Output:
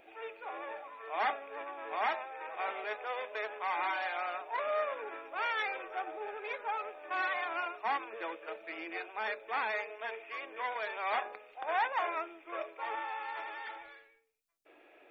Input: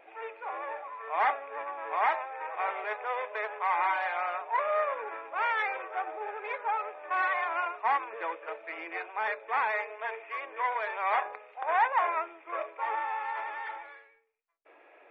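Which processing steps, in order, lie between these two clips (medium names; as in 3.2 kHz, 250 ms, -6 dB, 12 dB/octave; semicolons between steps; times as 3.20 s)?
graphic EQ 500/1000/2000 Hz -8/-12/-9 dB; trim +7 dB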